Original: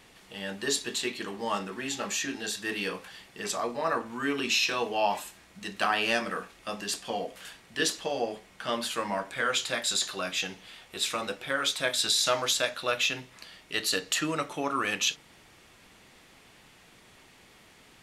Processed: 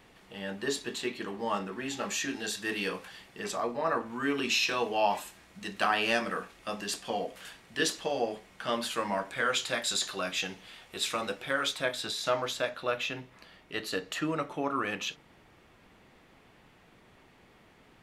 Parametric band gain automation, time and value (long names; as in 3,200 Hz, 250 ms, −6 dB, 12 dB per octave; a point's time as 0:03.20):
parametric band 8,400 Hz 2.8 octaves
0:01.77 −8.5 dB
0:02.22 −2 dB
0:03.07 −2 dB
0:03.78 −9.5 dB
0:04.48 −3 dB
0:11.58 −3 dB
0:12.03 −13.5 dB